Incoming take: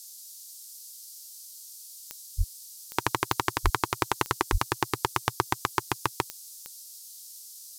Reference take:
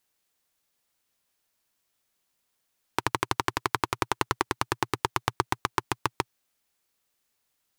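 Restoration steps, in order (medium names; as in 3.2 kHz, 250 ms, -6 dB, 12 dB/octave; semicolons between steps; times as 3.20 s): de-click; de-plosive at 2.37/3.63/4.51 s; noise print and reduce 30 dB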